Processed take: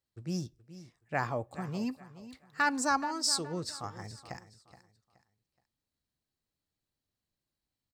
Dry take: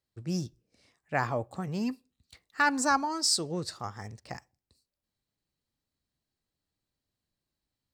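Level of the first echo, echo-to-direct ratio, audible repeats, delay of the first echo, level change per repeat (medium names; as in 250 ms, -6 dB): -15.0 dB, -14.5 dB, 2, 423 ms, -10.5 dB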